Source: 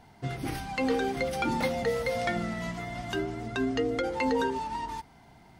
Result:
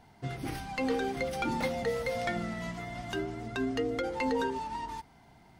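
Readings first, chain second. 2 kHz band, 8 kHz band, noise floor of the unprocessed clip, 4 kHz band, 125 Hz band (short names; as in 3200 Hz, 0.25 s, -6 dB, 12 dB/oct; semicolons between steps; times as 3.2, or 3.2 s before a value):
-3.0 dB, -3.0 dB, -56 dBFS, -3.0 dB, -3.0 dB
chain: tracing distortion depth 0.025 ms; gain -3 dB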